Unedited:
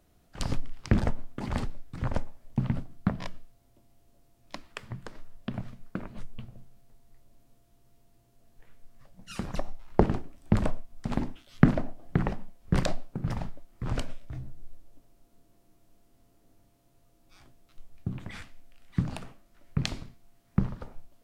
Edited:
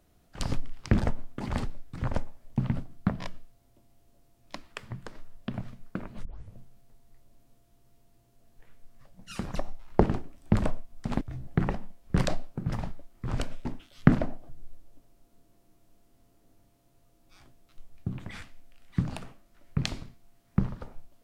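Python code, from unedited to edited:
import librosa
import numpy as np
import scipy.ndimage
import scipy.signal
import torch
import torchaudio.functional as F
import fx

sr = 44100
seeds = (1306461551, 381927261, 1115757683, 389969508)

y = fx.edit(x, sr, fx.tape_start(start_s=6.25, length_s=0.29),
    fx.swap(start_s=11.21, length_s=0.84, other_s=14.23, other_length_s=0.26), tone=tone)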